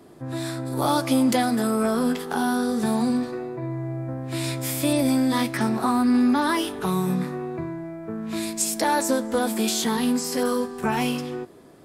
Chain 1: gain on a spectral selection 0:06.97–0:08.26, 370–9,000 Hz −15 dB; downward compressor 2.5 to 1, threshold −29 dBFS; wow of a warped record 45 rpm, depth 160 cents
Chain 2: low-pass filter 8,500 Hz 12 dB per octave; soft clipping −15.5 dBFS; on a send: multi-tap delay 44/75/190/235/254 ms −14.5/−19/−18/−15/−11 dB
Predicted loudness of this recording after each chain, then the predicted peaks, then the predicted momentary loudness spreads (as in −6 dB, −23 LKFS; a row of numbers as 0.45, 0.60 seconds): −30.0, −25.0 LKFS; −15.5, −12.0 dBFS; 6, 9 LU